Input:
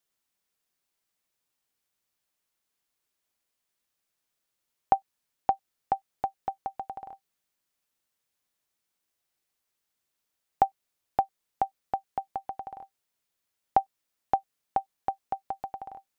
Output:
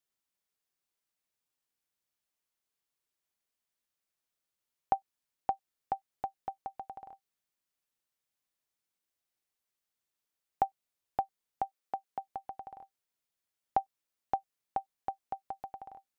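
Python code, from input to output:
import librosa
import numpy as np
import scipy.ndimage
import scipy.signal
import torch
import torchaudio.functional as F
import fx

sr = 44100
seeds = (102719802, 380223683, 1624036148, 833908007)

y = fx.highpass(x, sr, hz=fx.line((11.65, 380.0), (12.26, 100.0)), slope=12, at=(11.65, 12.26), fade=0.02)
y = F.gain(torch.from_numpy(y), -6.5).numpy()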